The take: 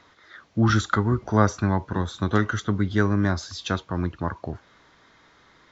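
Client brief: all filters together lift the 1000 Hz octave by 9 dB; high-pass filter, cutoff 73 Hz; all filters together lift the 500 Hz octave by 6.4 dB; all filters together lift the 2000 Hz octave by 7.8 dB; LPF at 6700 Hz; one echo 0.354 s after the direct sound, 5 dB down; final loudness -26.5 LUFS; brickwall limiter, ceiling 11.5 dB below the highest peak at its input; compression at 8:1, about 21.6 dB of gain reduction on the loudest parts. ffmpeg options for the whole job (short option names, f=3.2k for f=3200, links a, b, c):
-af "highpass=73,lowpass=6.7k,equalizer=f=500:t=o:g=6,equalizer=f=1k:t=o:g=8,equalizer=f=2k:t=o:g=6.5,acompressor=threshold=-31dB:ratio=8,alimiter=level_in=4.5dB:limit=-24dB:level=0:latency=1,volume=-4.5dB,aecho=1:1:354:0.562,volume=13.5dB"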